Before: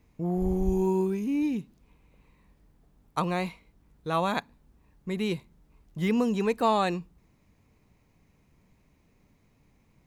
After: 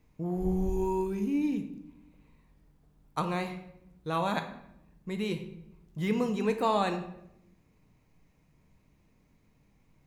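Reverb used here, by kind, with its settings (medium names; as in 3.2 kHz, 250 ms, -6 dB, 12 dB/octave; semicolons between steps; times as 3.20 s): simulated room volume 240 m³, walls mixed, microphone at 0.52 m; trim -3.5 dB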